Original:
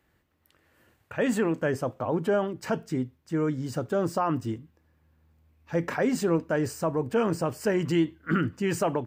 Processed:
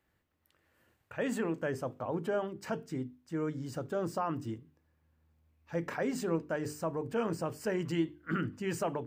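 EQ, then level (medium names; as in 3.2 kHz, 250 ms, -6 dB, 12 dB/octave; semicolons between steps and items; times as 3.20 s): hum notches 50/100/150/200/250/300/350/400/450 Hz; -7.0 dB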